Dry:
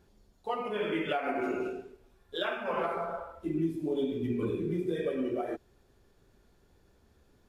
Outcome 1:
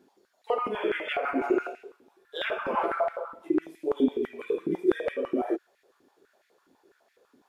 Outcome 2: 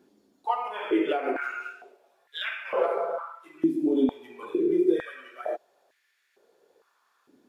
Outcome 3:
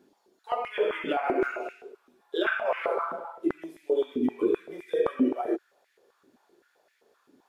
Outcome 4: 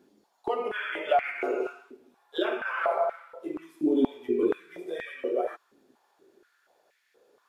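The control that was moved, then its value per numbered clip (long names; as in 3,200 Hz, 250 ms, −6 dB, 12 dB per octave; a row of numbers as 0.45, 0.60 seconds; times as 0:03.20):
high-pass on a step sequencer, speed: 12, 2.2, 7.7, 4.2 Hertz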